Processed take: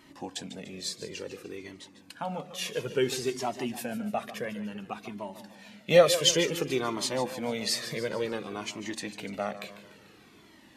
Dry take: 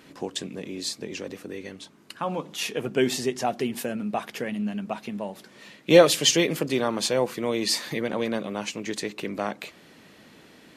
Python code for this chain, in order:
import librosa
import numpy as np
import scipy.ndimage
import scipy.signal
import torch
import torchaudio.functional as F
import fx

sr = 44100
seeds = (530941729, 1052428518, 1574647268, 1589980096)

y = fx.echo_split(x, sr, split_hz=320.0, low_ms=314, high_ms=147, feedback_pct=52, wet_db=-13.0)
y = fx.comb_cascade(y, sr, direction='falling', hz=0.57)